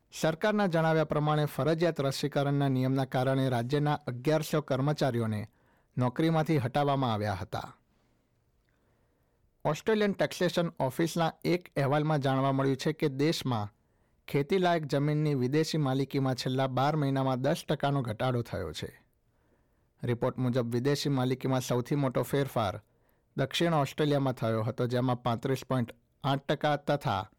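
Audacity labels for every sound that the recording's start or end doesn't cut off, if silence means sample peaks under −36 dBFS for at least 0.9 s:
9.650000	18.890000	sound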